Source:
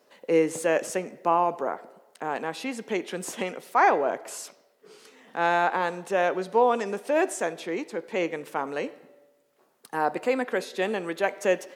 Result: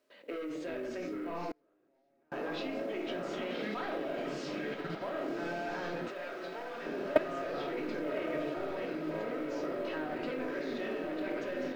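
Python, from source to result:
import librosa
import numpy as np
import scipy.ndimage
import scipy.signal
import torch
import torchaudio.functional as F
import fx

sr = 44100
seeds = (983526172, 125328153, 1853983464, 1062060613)

y = fx.echo_pitch(x, sr, ms=295, semitones=-4, count=2, db_per_echo=-6.0)
y = scipy.signal.sosfilt(scipy.signal.butter(2, 210.0, 'highpass', fs=sr, output='sos'), y)
y = fx.peak_eq(y, sr, hz=900.0, db=-9.5, octaves=0.51)
y = 10.0 ** (-22.5 / 20.0) * np.tanh(y / 10.0 ** (-22.5 / 20.0))
y = fx.room_shoebox(y, sr, seeds[0], volume_m3=700.0, walls='furnished', distance_m=2.8)
y = fx.level_steps(y, sr, step_db=19)
y = scipy.signal.sosfilt(scipy.signal.butter(4, 4400.0, 'lowpass', fs=sr, output='sos'), y)
y = fx.echo_diffused(y, sr, ms=1145, feedback_pct=57, wet_db=-6.0)
y = fx.quant_companded(y, sr, bits=8)
y = fx.gate_flip(y, sr, shuts_db=-33.0, range_db=-35, at=(1.51, 2.32))
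y = fx.low_shelf(y, sr, hz=470.0, db=-10.5, at=(6.08, 6.86))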